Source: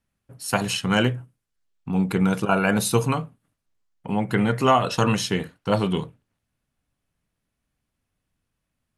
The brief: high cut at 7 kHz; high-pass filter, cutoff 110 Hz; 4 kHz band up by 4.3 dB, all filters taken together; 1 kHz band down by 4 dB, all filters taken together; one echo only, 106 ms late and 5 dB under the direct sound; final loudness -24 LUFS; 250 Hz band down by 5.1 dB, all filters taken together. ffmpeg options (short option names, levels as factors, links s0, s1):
-af "highpass=110,lowpass=7000,equalizer=f=250:t=o:g=-6.5,equalizer=f=1000:t=o:g=-5.5,equalizer=f=4000:t=o:g=7,aecho=1:1:106:0.562"